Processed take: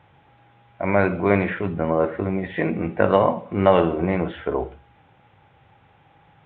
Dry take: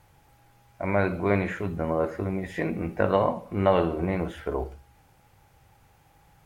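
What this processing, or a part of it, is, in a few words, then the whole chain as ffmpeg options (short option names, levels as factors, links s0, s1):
Bluetooth headset: -af "highpass=100,aresample=8000,aresample=44100,volume=1.88" -ar 16000 -c:a sbc -b:a 64k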